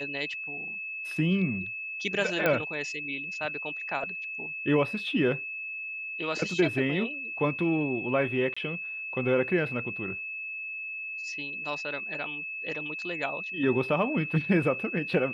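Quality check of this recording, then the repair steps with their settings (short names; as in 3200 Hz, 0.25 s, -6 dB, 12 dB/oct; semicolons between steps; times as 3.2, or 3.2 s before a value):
tone 2600 Hz -34 dBFS
2.46 pop -12 dBFS
8.54–8.56 gap 25 ms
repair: de-click; notch 2600 Hz, Q 30; interpolate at 8.54, 25 ms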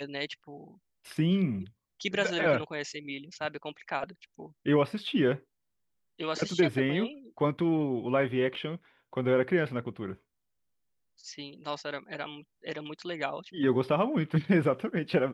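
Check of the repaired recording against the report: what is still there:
2.46 pop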